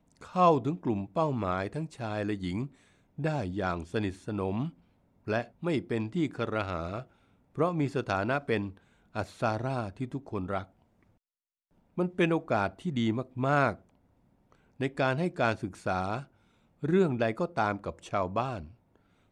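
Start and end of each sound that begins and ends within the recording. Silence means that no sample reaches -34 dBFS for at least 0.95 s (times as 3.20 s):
11.98–13.73 s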